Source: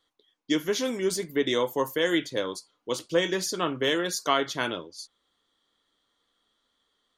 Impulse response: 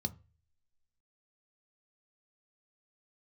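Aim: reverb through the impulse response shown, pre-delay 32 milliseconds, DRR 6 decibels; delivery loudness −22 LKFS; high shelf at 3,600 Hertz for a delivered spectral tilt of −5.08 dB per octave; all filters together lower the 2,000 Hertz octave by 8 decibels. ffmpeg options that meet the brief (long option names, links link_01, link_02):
-filter_complex "[0:a]equalizer=frequency=2000:width_type=o:gain=-9,highshelf=frequency=3600:gain=-4,asplit=2[link_01][link_02];[1:a]atrim=start_sample=2205,adelay=32[link_03];[link_02][link_03]afir=irnorm=-1:irlink=0,volume=-6dB[link_04];[link_01][link_04]amix=inputs=2:normalize=0,volume=5dB"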